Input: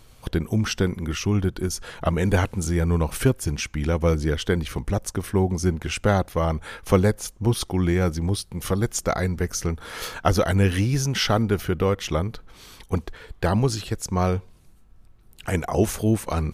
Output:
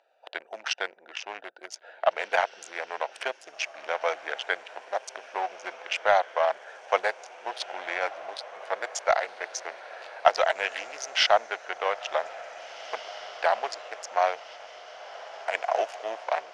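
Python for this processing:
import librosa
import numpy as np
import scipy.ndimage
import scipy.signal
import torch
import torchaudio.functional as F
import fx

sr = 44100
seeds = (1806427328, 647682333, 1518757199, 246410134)

p1 = fx.wiener(x, sr, points=41)
p2 = scipy.signal.sosfilt(scipy.signal.cheby1(4, 1.0, 650.0, 'highpass', fs=sr, output='sos'), p1)
p3 = fx.peak_eq(p2, sr, hz=1200.0, db=-6.5, octaves=0.44)
p4 = 10.0 ** (-20.5 / 20.0) * np.tanh(p3 / 10.0 ** (-20.5 / 20.0))
p5 = p3 + (p4 * 10.0 ** (-5.5 / 20.0))
p6 = fx.air_absorb(p5, sr, metres=140.0)
p7 = fx.echo_diffused(p6, sr, ms=1900, feedback_pct=61, wet_db=-15.5)
y = p7 * 10.0 ** (4.5 / 20.0)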